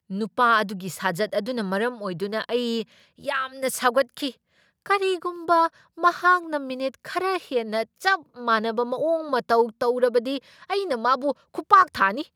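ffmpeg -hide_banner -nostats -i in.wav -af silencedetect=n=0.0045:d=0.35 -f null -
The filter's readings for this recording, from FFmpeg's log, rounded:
silence_start: 4.34
silence_end: 4.86 | silence_duration: 0.52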